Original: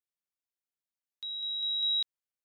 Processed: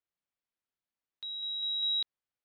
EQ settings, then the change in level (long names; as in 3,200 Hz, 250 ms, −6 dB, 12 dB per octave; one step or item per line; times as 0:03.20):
high-frequency loss of the air 180 metres
+3.5 dB